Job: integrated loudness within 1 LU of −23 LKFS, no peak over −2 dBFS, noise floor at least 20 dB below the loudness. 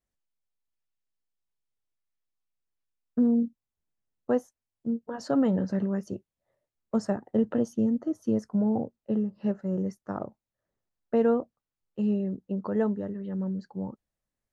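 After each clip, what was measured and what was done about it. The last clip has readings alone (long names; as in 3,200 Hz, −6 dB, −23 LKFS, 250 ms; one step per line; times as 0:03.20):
integrated loudness −29.0 LKFS; sample peak −14.5 dBFS; target loudness −23.0 LKFS
→ level +6 dB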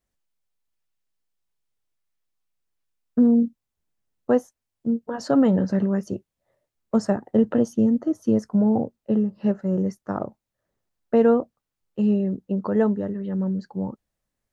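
integrated loudness −23.0 LKFS; sample peak −8.5 dBFS; background noise floor −84 dBFS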